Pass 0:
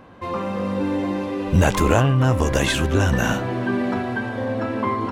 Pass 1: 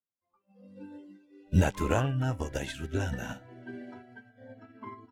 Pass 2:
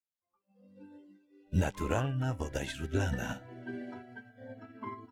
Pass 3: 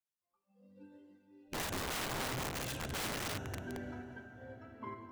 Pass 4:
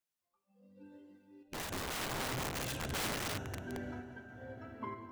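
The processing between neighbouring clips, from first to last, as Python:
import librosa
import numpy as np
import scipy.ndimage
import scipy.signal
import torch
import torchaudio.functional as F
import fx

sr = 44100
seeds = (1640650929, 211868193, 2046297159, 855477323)

y1 = fx.noise_reduce_blind(x, sr, reduce_db=21)
y1 = fx.upward_expand(y1, sr, threshold_db=-35.0, expansion=2.5)
y1 = F.gain(torch.from_numpy(y1), -5.0).numpy()
y2 = fx.rider(y1, sr, range_db=5, speed_s=2.0)
y2 = F.gain(torch.from_numpy(y2), -3.0).numpy()
y3 = fx.rev_plate(y2, sr, seeds[0], rt60_s=4.2, hf_ratio=0.6, predelay_ms=0, drr_db=6.0)
y3 = (np.mod(10.0 ** (30.0 / 20.0) * y3 + 1.0, 2.0) - 1.0) / 10.0 ** (30.0 / 20.0)
y3 = F.gain(torch.from_numpy(y3), -3.5).numpy()
y4 = fx.tremolo_random(y3, sr, seeds[1], hz=3.5, depth_pct=55)
y4 = F.gain(torch.from_numpy(y4), 4.0).numpy()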